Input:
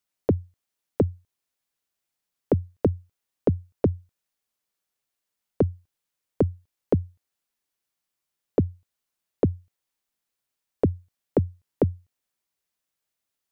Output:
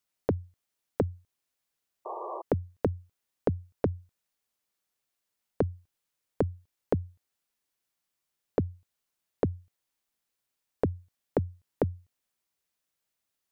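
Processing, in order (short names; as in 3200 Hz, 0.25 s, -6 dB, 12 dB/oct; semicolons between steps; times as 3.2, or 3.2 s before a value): painted sound noise, 2.05–2.42, 330–1200 Hz -37 dBFS; compressor 4:1, threshold -24 dBFS, peak gain reduction 7.5 dB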